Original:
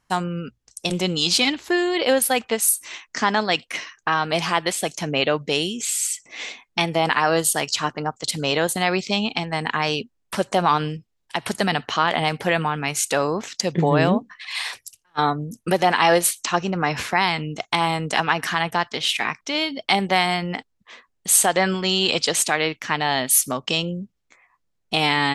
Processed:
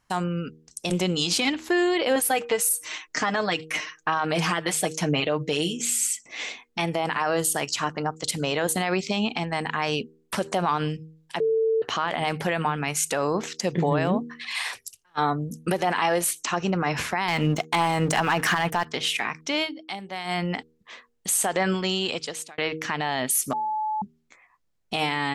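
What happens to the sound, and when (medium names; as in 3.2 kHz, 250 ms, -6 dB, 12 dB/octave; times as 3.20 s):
2.15–5.73 s: comb 6.5 ms, depth 70%
11.40–11.82 s: bleep 446 Hz -19 dBFS
17.28–18.85 s: waveshaping leveller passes 2
19.61–20.40 s: dip -15 dB, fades 0.16 s
21.62–22.58 s: fade out
23.53–24.02 s: bleep 861 Hz -24 dBFS
whole clip: dynamic bell 4.1 kHz, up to -5 dB, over -35 dBFS, Q 1.6; de-hum 79.01 Hz, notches 6; peak limiter -13.5 dBFS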